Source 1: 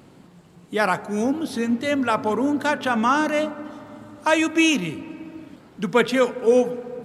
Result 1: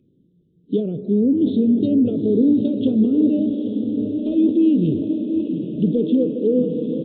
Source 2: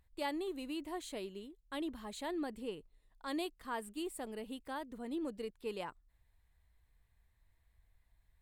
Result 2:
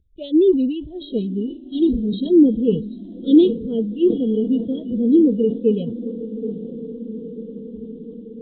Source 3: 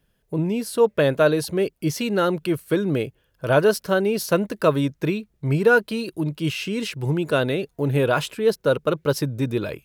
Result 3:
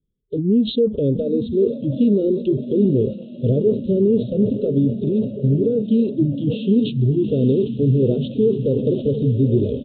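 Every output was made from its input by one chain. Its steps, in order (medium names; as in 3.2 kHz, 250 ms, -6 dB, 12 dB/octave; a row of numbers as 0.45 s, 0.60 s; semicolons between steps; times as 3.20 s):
block-companded coder 5-bit; compression 5:1, threshold -20 dBFS; treble shelf 2.8 kHz -5 dB; low-pass that closes with the level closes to 1.7 kHz, closed at -20.5 dBFS; inverse Chebyshev band-stop 800–2200 Hz, stop band 50 dB; peak limiter -21.5 dBFS; on a send: echo that smears into a reverb 831 ms, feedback 70%, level -8.5 dB; on the sum: resampled via 8 kHz; spectral noise reduction 21 dB; decay stretcher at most 120 dB/s; normalise loudness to -19 LUFS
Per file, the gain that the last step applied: +11.0 dB, +28.0 dB, +12.5 dB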